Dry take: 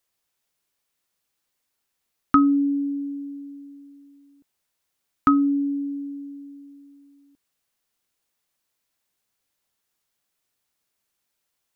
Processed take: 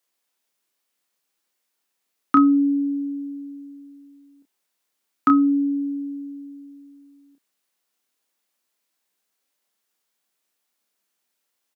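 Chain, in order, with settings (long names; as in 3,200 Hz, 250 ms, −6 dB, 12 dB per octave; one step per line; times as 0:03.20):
high-pass filter 190 Hz 24 dB per octave
double-tracking delay 29 ms −5.5 dB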